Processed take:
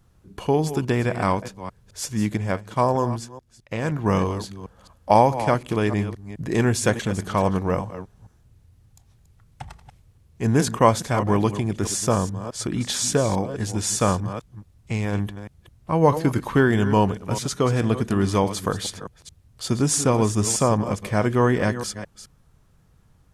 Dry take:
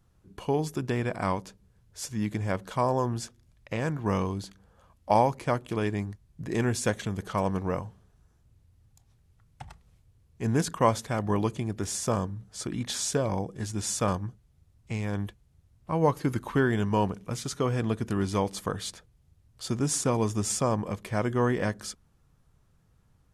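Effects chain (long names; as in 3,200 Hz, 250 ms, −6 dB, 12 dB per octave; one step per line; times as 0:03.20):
delay that plays each chunk backwards 212 ms, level −12 dB
0:02.37–0:03.92: expander for the loud parts 1.5 to 1, over −42 dBFS
level +6.5 dB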